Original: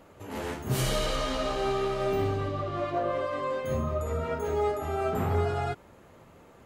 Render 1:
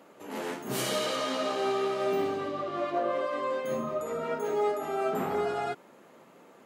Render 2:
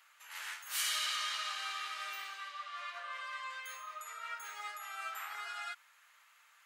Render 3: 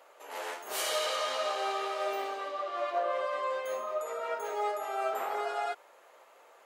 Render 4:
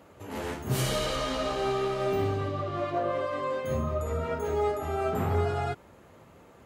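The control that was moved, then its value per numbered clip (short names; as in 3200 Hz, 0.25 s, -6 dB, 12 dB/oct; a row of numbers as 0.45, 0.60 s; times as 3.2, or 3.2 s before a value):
HPF, cutoff: 190, 1400, 530, 42 Hz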